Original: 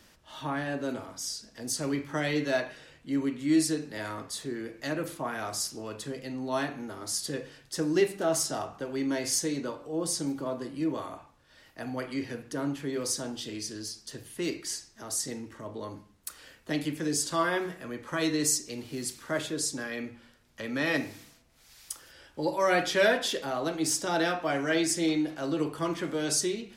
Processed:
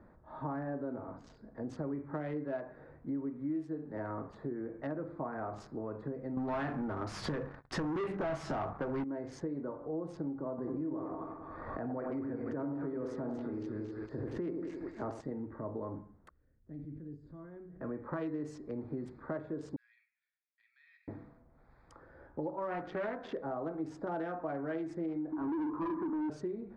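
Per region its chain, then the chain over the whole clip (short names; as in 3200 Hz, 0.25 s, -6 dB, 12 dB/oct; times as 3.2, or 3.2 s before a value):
6.37–9.04 sample leveller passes 5 + bell 400 Hz -7 dB 2.3 oct
10.58–15.21 split-band echo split 1300 Hz, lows 91 ms, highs 0.24 s, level -4.5 dB + backwards sustainer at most 33 dB/s
16.29–17.81 passive tone stack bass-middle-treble 10-0-1 + sustainer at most 35 dB/s
19.76–21.08 steep high-pass 2500 Hz + high shelf 3300 Hz -5 dB + compressor 2:1, threshold -46 dBFS
22.49–23.28 dynamic EQ 480 Hz, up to -4 dB, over -33 dBFS, Q 1.3 + Doppler distortion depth 0.24 ms
25.32–26.3 double band-pass 560 Hz, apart 1.7 oct + sample leveller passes 5
whole clip: Wiener smoothing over 15 samples; LPF 1300 Hz 12 dB/oct; compressor 5:1, threshold -39 dBFS; gain +3.5 dB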